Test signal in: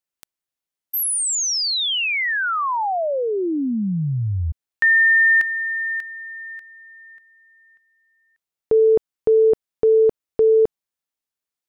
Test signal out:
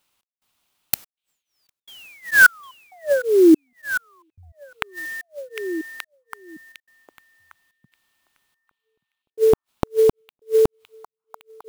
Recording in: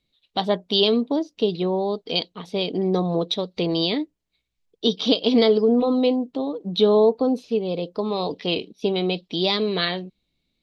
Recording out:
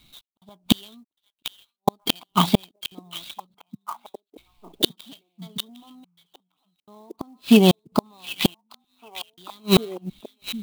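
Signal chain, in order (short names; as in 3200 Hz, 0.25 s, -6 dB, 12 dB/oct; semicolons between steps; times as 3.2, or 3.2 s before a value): low shelf 200 Hz -5 dB; in parallel at -2.5 dB: compressor 5:1, threshold -25 dBFS; on the sum: fixed phaser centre 1800 Hz, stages 6; flipped gate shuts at -20 dBFS, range -41 dB; step gate "x.xxx....xxx" 72 bpm -60 dB; on a send: delay with a stepping band-pass 0.755 s, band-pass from 3000 Hz, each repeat -1.4 oct, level -8.5 dB; on the sum: maximiser +17 dB; clock jitter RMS 0.022 ms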